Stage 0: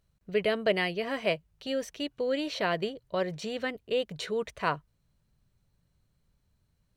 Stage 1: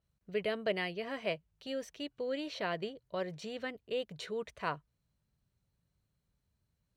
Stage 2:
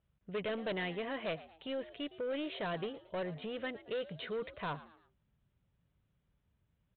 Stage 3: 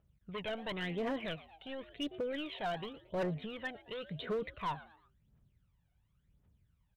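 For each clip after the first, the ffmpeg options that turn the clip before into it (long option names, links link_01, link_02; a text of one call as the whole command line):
ffmpeg -i in.wav -af "highpass=40,adynamicequalizer=threshold=0.00251:dfrequency=6900:dqfactor=0.7:tfrequency=6900:tqfactor=0.7:attack=5:release=100:ratio=0.375:range=2.5:mode=cutabove:tftype=highshelf,volume=-7dB" out.wav
ffmpeg -i in.wav -filter_complex "[0:a]aresample=8000,asoftclip=type=tanh:threshold=-35.5dB,aresample=44100,asplit=4[link_01][link_02][link_03][link_04];[link_02]adelay=113,afreqshift=80,volume=-17dB[link_05];[link_03]adelay=226,afreqshift=160,volume=-25.2dB[link_06];[link_04]adelay=339,afreqshift=240,volume=-33.4dB[link_07];[link_01][link_05][link_06][link_07]amix=inputs=4:normalize=0,volume=3dB" out.wav
ffmpeg -i in.wav -af "aphaser=in_gain=1:out_gain=1:delay=1.4:decay=0.68:speed=0.93:type=triangular,asoftclip=type=hard:threshold=-29dB,volume=-2dB" out.wav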